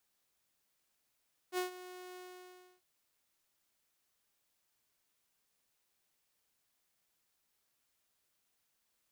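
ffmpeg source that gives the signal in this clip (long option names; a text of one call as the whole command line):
ffmpeg -f lavfi -i "aevalsrc='0.0355*(2*mod(364*t,1)-1)':duration=1.292:sample_rate=44100,afade=type=in:duration=0.059,afade=type=out:start_time=0.059:duration=0.123:silence=0.158,afade=type=out:start_time=0.64:duration=0.652" out.wav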